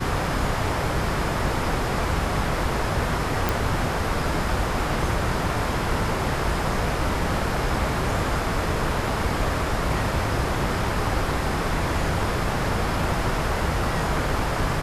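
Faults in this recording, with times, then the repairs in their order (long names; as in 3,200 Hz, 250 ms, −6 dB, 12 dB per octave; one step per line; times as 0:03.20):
0:03.49: click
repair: click removal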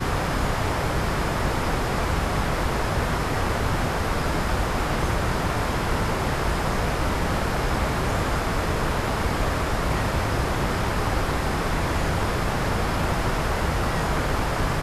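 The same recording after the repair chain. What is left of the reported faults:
none of them is left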